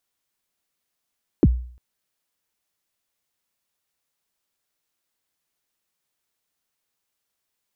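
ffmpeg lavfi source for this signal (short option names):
-f lavfi -i "aevalsrc='0.398*pow(10,-3*t/0.51)*sin(2*PI*(410*0.041/log(61/410)*(exp(log(61/410)*min(t,0.041)/0.041)-1)+61*max(t-0.041,0)))':d=0.35:s=44100"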